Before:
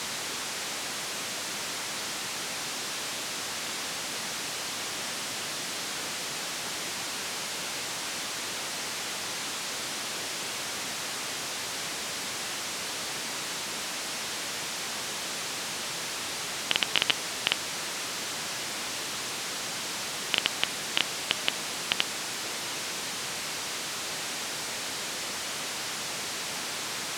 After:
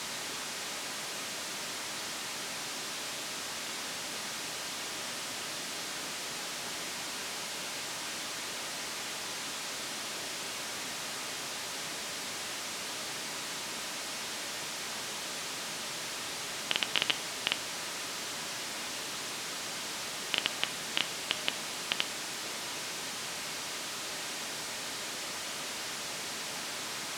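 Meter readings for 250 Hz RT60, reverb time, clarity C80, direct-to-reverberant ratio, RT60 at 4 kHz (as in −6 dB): 1.2 s, 0.80 s, 19.0 dB, 10.0 dB, 0.45 s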